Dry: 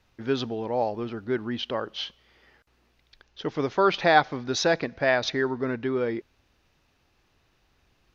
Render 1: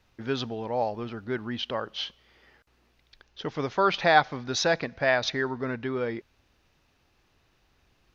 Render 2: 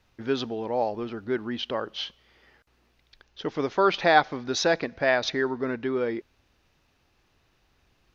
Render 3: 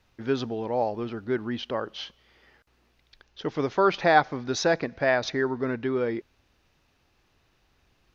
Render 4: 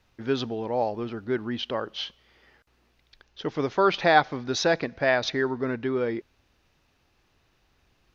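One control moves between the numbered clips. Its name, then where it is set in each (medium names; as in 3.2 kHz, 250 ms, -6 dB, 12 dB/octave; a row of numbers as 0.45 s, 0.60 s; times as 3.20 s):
dynamic bell, frequency: 340 Hz, 120 Hz, 3.4 kHz, 9.8 kHz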